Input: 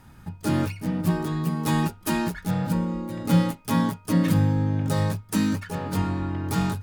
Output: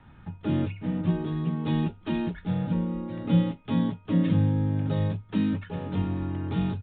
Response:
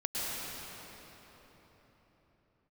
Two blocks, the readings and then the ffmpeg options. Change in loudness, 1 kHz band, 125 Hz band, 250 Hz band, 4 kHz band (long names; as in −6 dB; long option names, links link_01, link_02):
−2.5 dB, −9.0 dB, −2.0 dB, −2.0 dB, −7.0 dB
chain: -filter_complex "[0:a]acrossover=split=230|660|2500[link_01][link_02][link_03][link_04];[link_03]acompressor=threshold=-46dB:ratio=6[link_05];[link_01][link_02][link_05][link_04]amix=inputs=4:normalize=0,aresample=8000,aresample=44100,volume=-2dB"